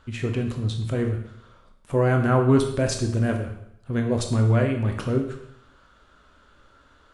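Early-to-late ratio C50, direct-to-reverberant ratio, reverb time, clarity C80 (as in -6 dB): 7.0 dB, 3.0 dB, 0.75 s, 10.0 dB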